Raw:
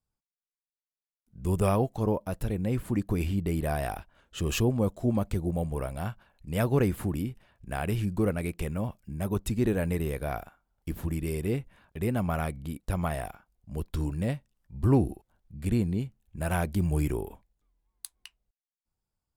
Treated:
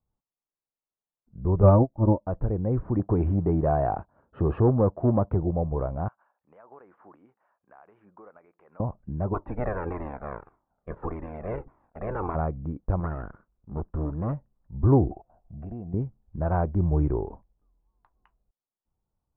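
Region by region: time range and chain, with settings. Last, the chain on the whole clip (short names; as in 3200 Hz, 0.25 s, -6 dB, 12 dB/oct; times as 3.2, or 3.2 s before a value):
1.62–2.27 bell 140 Hz +13.5 dB 1.4 oct + comb 3.4 ms, depth 89% + upward expander 2.5:1, over -29 dBFS
2.99–5.43 HPF 83 Hz + sample leveller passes 1
6.08–8.8 HPF 1100 Hz + compressor 5:1, threshold -49 dBFS
9.33–12.34 spectral limiter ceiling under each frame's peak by 28 dB + notch 3000 Hz, Q 7.9 + cascading flanger falling 1.7 Hz
13–14.33 minimum comb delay 0.64 ms + low shelf 130 Hz -6 dB
15.11–15.94 compressor 4:1, threshold -42 dBFS + small resonant body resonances 690/2700 Hz, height 18 dB, ringing for 30 ms
whole clip: inverse Chebyshev low-pass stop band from 6400 Hz, stop band 80 dB; dynamic EQ 210 Hz, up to -6 dB, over -40 dBFS, Q 1.9; gain +5 dB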